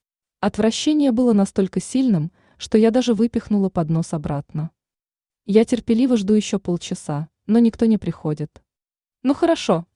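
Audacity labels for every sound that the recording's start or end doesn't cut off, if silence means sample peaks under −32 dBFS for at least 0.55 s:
5.490000	8.560000	sound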